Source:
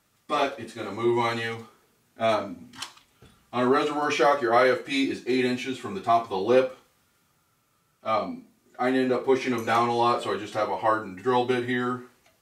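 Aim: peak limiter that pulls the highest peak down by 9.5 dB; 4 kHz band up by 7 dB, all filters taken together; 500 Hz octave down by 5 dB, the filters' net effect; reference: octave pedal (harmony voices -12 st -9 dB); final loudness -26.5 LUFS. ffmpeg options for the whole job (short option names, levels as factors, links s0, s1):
-filter_complex "[0:a]equalizer=f=500:t=o:g=-7,equalizer=f=4000:t=o:g=8.5,alimiter=limit=0.112:level=0:latency=1,asplit=2[s0][s1];[s1]asetrate=22050,aresample=44100,atempo=2,volume=0.355[s2];[s0][s2]amix=inputs=2:normalize=0,volume=1.41"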